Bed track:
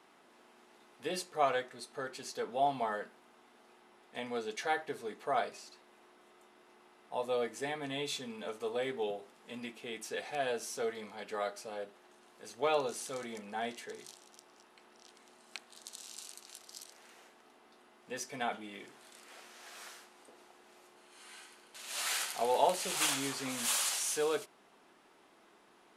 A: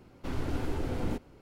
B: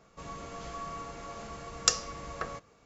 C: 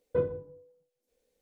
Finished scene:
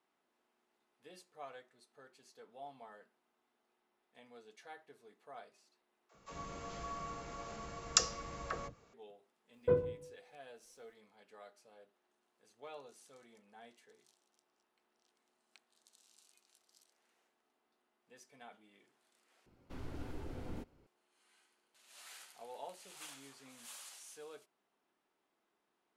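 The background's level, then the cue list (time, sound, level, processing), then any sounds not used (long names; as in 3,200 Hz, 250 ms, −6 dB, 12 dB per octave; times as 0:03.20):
bed track −19.5 dB
0:06.09: overwrite with B −4 dB + all-pass dispersion lows, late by 61 ms, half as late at 380 Hz
0:09.53: mix in C −2 dB
0:16.18: mix in C −16.5 dB + linear-phase brick-wall high-pass 2,100 Hz
0:19.46: overwrite with A −12.5 dB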